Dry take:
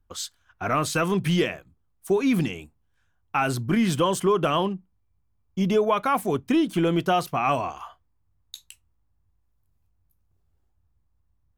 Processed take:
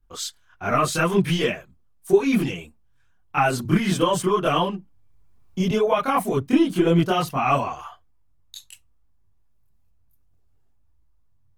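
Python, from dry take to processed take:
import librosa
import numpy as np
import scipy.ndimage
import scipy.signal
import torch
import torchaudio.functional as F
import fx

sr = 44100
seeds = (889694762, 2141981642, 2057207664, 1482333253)

y = fx.chorus_voices(x, sr, voices=6, hz=0.62, base_ms=26, depth_ms=4.6, mix_pct=65)
y = fx.band_squash(y, sr, depth_pct=40, at=(3.65, 5.71))
y = y * librosa.db_to_amplitude(5.0)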